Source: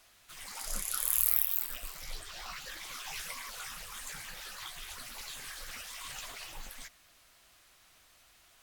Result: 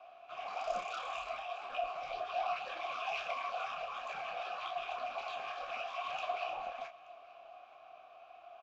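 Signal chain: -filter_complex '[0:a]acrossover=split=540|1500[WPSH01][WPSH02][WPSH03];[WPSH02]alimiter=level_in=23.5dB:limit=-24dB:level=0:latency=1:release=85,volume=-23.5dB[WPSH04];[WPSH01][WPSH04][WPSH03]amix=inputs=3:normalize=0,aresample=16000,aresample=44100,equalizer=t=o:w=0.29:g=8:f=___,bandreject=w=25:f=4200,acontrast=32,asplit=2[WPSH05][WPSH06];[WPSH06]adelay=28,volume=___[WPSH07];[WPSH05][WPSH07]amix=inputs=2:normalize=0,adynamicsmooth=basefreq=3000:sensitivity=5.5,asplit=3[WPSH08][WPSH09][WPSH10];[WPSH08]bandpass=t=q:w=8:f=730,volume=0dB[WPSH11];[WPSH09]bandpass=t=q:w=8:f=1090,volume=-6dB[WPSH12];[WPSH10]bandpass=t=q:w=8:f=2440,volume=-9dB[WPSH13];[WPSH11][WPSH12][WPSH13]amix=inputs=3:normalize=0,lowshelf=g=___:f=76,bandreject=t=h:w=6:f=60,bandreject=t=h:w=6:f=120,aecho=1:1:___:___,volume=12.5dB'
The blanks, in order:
680, -6dB, 3.5, 878, 0.0668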